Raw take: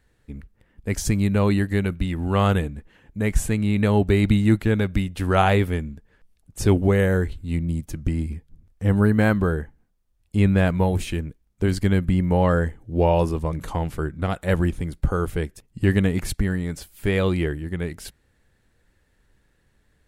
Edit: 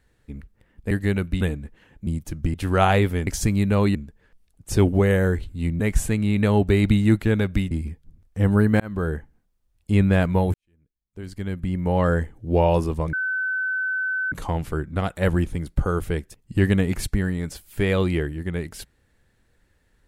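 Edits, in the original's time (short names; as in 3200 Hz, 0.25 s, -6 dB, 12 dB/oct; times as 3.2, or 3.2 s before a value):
0.91–1.59 move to 5.84
2.09–2.54 cut
3.2–5.11 swap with 7.69–8.16
9.25–9.58 fade in
10.99–12.59 fade in quadratic
13.58 add tone 1520 Hz -22 dBFS 1.19 s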